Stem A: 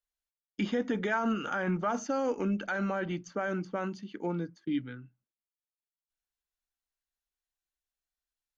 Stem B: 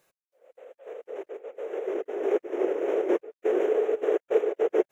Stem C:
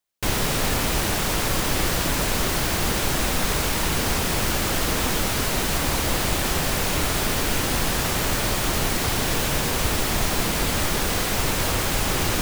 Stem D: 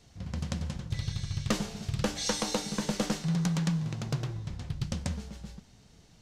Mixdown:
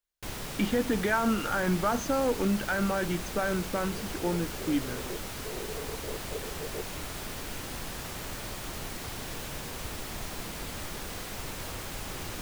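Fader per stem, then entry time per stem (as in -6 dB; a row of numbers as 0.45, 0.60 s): +3.0 dB, -16.5 dB, -15.0 dB, off; 0.00 s, 2.00 s, 0.00 s, off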